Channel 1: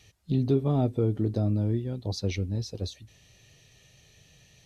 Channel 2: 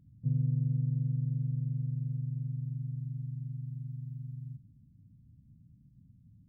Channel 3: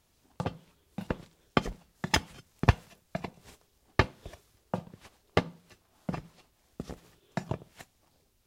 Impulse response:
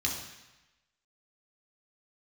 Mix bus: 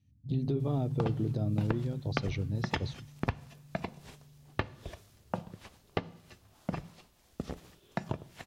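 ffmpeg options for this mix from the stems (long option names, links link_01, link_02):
-filter_complex "[0:a]agate=range=-25dB:threshold=-50dB:ratio=16:detection=peak,volume=-3.5dB,asplit=2[link_01][link_02];[1:a]volume=-4dB,asplit=2[link_03][link_04];[link_04]volume=-12dB[link_05];[2:a]acompressor=threshold=-31dB:ratio=6,adelay=600,volume=2dB,asplit=2[link_06][link_07];[link_07]volume=-23.5dB[link_08];[link_02]apad=whole_len=285852[link_09];[link_03][link_09]sidechaingate=range=-33dB:threshold=-38dB:ratio=16:detection=peak[link_10];[link_01][link_10]amix=inputs=2:normalize=0,alimiter=limit=-22.5dB:level=0:latency=1:release=78,volume=0dB[link_11];[3:a]atrim=start_sample=2205[link_12];[link_05][link_08]amix=inputs=2:normalize=0[link_13];[link_13][link_12]afir=irnorm=-1:irlink=0[link_14];[link_06][link_11][link_14]amix=inputs=3:normalize=0,acrossover=split=4400[link_15][link_16];[link_16]acompressor=threshold=-58dB:ratio=4:attack=1:release=60[link_17];[link_15][link_17]amix=inputs=2:normalize=0"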